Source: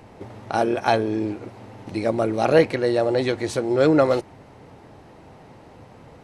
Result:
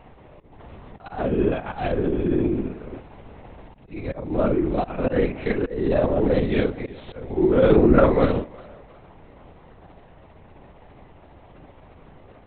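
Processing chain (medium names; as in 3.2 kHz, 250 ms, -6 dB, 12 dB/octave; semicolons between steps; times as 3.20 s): granular stretch 2×, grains 133 ms; slow attack 286 ms; thinning echo 356 ms, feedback 46%, high-pass 420 Hz, level -21 dB; LPC vocoder at 8 kHz whisper; dynamic bell 260 Hz, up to +7 dB, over -39 dBFS, Q 1.3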